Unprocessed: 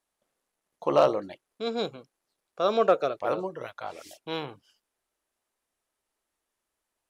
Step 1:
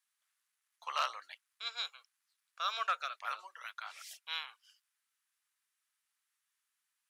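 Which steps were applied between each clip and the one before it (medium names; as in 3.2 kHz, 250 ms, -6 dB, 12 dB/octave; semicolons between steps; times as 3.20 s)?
high-pass 1.3 kHz 24 dB/octave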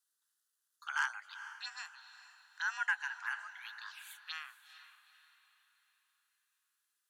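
touch-sensitive phaser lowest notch 330 Hz, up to 3.6 kHz, full sweep at -38.5 dBFS; echo that smears into a reverb 450 ms, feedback 43%, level -13 dB; frequency shift +300 Hz; trim +2 dB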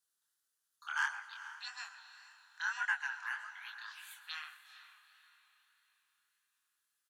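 chorus 1.7 Hz, delay 19.5 ms, depth 7.2 ms; delay 126 ms -17 dB; reverberation RT60 2.0 s, pre-delay 113 ms, DRR 18 dB; trim +2.5 dB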